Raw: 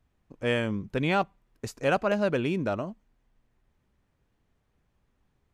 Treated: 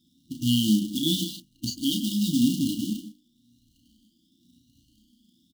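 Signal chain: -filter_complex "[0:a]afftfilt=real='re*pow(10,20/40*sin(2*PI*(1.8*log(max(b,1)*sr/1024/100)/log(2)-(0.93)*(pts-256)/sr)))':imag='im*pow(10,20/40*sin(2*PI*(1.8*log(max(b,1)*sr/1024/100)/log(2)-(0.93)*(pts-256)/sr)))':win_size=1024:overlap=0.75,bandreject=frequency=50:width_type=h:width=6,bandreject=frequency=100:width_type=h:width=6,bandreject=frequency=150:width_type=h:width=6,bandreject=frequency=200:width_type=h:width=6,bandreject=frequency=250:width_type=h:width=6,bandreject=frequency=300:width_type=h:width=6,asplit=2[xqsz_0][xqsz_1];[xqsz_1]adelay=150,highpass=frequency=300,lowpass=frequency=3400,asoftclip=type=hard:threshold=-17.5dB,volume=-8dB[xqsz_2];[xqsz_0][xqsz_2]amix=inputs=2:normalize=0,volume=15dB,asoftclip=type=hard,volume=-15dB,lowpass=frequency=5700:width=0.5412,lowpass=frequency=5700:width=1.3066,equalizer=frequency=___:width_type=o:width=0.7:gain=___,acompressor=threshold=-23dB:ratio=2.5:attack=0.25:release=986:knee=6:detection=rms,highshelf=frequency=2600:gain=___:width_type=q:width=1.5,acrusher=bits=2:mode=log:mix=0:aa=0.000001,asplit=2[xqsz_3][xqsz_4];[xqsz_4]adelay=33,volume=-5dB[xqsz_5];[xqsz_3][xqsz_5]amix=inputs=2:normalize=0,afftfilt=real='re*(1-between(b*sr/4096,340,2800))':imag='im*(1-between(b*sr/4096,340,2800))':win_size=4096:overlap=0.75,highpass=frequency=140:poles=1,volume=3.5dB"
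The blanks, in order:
250, 14, 8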